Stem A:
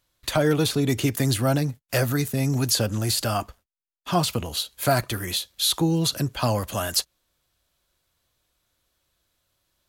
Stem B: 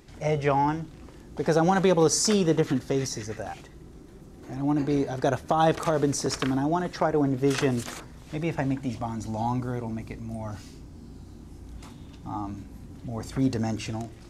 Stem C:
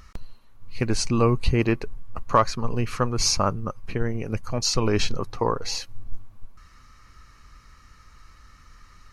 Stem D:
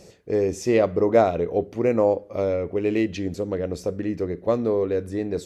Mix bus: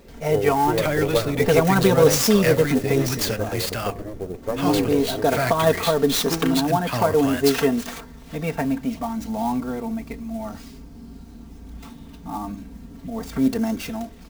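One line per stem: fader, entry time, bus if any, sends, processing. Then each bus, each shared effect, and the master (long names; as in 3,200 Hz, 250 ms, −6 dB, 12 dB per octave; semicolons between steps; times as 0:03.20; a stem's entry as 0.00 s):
−3.0 dB, 0.50 s, no send, parametric band 2,100 Hz +10.5 dB 0.67 octaves; hum removal 53.96 Hz, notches 21
+1.5 dB, 0.00 s, no send, comb filter 4.4 ms, depth 89%
−18.5 dB, 0.00 s, no send, no processing
−0.5 dB, 0.00 s, no send, lower of the sound and its delayed copy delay 2.1 ms; rotating-speaker cabinet horn 7.5 Hz; low-pass filter 1,100 Hz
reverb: not used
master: converter with an unsteady clock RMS 0.023 ms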